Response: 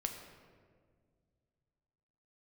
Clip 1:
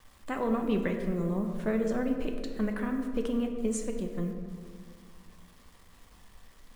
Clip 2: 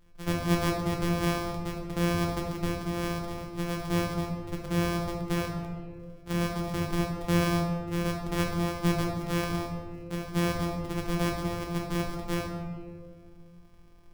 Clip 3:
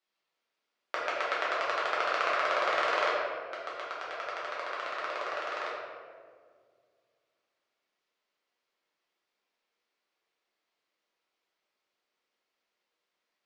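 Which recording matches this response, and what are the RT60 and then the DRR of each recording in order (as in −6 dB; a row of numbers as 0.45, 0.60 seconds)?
1; 1.9, 1.9, 1.9 seconds; 3.5, −1.5, −8.0 decibels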